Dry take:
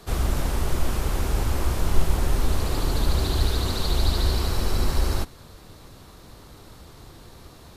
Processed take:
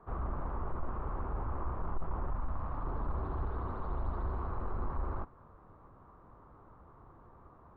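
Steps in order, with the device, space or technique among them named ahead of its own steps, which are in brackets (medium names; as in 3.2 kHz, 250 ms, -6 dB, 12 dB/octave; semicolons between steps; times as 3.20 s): 2.30–2.85 s: peaking EQ 400 Hz -12 dB 0.51 oct; overdriven synthesiser ladder filter (saturation -14 dBFS, distortion -15 dB; four-pole ladder low-pass 1.3 kHz, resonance 55%); trim -2 dB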